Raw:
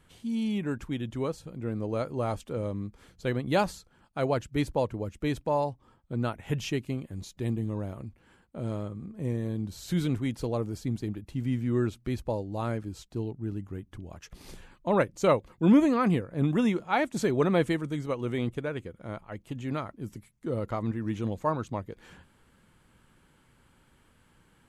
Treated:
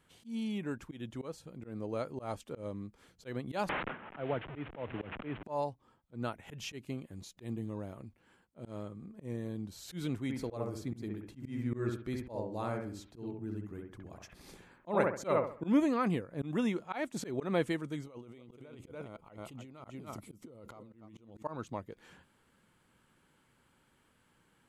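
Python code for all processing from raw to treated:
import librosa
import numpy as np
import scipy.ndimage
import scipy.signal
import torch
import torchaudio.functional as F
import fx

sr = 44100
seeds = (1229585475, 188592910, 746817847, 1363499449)

y = fx.chain(x, sr, fx.delta_mod(bps=16000, step_db=-33.5),
    fx.gate_hold(open_db=-34.0, close_db=-39.0, hold_ms=71.0, range_db=-21, attack_ms=1.4, release_ms=100.0),
    fx.band_squash(depth_pct=100), at=(3.69, 5.43))
y = fx.chain(y, sr, fx.notch(hz=2900.0, q=14.0),
    fx.echo_bbd(ms=67, stages=1024, feedback_pct=33, wet_db=-3.0), at=(10.23, 15.66))
y = fx.chain(y, sr, fx.peak_eq(hz=1700.0, db=-13.0, octaves=0.24),
    fx.echo_single(ms=291, db=-9.0),
    fx.over_compress(threshold_db=-42.0, ratio=-1.0), at=(18.03, 21.43))
y = fx.low_shelf(y, sr, hz=92.0, db=-11.5)
y = fx.auto_swell(y, sr, attack_ms=123.0)
y = y * librosa.db_to_amplitude(-5.0)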